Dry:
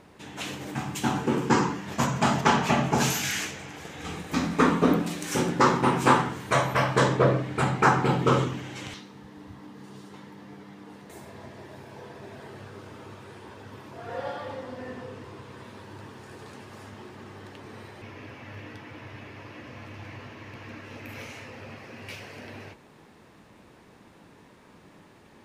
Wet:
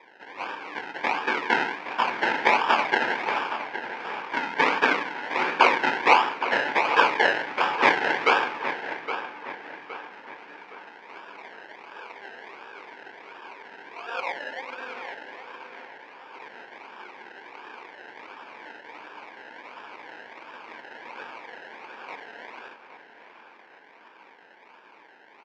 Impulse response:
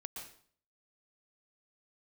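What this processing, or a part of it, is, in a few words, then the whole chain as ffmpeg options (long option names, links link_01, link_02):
circuit-bent sampling toy: -filter_complex "[0:a]asplit=3[link_01][link_02][link_03];[link_01]afade=type=out:start_time=15.86:duration=0.02[link_04];[link_02]highpass=frequency=720:poles=1,afade=type=in:start_time=15.86:duration=0.02,afade=type=out:start_time=16.33:duration=0.02[link_05];[link_03]afade=type=in:start_time=16.33:duration=0.02[link_06];[link_04][link_05][link_06]amix=inputs=3:normalize=0,highpass=210,acrusher=samples=30:mix=1:aa=0.000001:lfo=1:lforange=18:lforate=1.4,highpass=530,equalizer=frequency=620:width_type=q:width=4:gain=-4,equalizer=frequency=920:width_type=q:width=4:gain=7,equalizer=frequency=1600:width_type=q:width=4:gain=9,equalizer=frequency=2300:width_type=q:width=4:gain=9,equalizer=frequency=4000:width_type=q:width=4:gain=-4,lowpass=frequency=4500:width=0.5412,lowpass=frequency=4500:width=1.3066,asplit=2[link_07][link_08];[link_08]adelay=816,lowpass=frequency=4000:poles=1,volume=-10dB,asplit=2[link_09][link_10];[link_10]adelay=816,lowpass=frequency=4000:poles=1,volume=0.43,asplit=2[link_11][link_12];[link_12]adelay=816,lowpass=frequency=4000:poles=1,volume=0.43,asplit=2[link_13][link_14];[link_14]adelay=816,lowpass=frequency=4000:poles=1,volume=0.43,asplit=2[link_15][link_16];[link_16]adelay=816,lowpass=frequency=4000:poles=1,volume=0.43[link_17];[link_07][link_09][link_11][link_13][link_15][link_17]amix=inputs=6:normalize=0,volume=2dB"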